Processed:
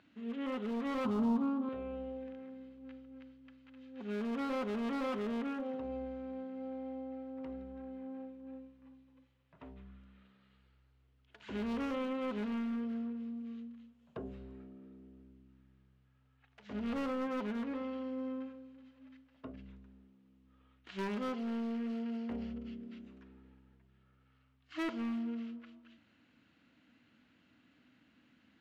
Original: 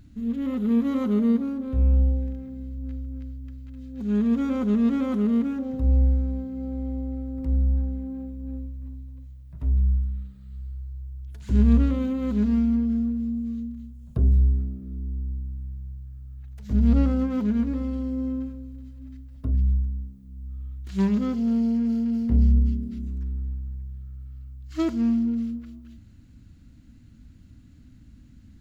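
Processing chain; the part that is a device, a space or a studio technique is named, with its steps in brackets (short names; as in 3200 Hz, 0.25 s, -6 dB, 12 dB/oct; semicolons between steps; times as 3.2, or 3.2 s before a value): megaphone (BPF 540–2600 Hz; bell 2900 Hz +5.5 dB 0.53 oct; hard clip -34 dBFS, distortion -12 dB); 1.05–1.69 graphic EQ 125/250/500/1000/2000 Hz +10/+6/-6/+10/-11 dB; gain +1 dB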